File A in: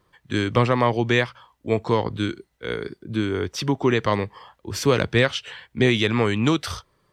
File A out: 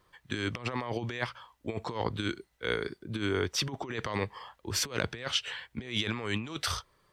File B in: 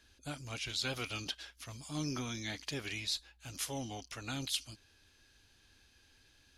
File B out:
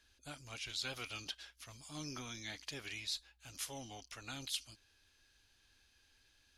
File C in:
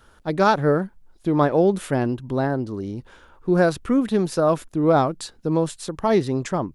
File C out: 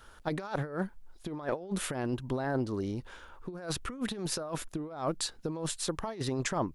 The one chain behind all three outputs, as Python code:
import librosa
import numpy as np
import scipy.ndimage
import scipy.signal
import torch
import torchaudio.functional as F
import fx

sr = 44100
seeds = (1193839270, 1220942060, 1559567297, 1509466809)

y = fx.low_shelf(x, sr, hz=77.0, db=9.5)
y = fx.over_compress(y, sr, threshold_db=-23.0, ratio=-0.5)
y = fx.low_shelf(y, sr, hz=400.0, db=-9.0)
y = y * librosa.db_to_amplitude(-4.0)